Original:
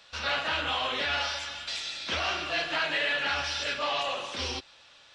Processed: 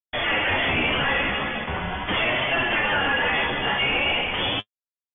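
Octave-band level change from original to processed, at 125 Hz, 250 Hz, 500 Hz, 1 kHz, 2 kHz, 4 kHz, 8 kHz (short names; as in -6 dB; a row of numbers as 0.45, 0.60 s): +12.5 dB, +13.5 dB, +7.5 dB, +6.5 dB, +8.5 dB, +4.5 dB, under -40 dB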